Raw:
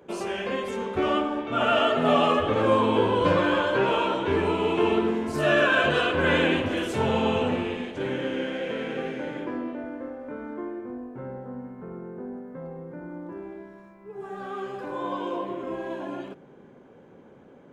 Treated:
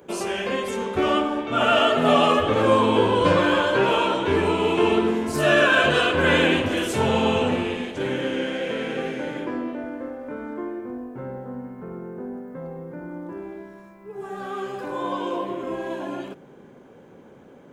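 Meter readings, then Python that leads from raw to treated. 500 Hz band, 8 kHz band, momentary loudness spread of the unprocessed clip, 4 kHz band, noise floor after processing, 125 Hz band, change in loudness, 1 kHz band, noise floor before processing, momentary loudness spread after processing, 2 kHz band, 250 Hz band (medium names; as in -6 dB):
+3.0 dB, +9.0 dB, 17 LU, +5.0 dB, -48 dBFS, +3.0 dB, +3.5 dB, +3.5 dB, -51 dBFS, 18 LU, +4.0 dB, +3.0 dB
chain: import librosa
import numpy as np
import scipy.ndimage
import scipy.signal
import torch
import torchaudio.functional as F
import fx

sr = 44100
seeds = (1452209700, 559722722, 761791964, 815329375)

y = fx.high_shelf(x, sr, hz=5600.0, db=9.5)
y = y * 10.0 ** (3.0 / 20.0)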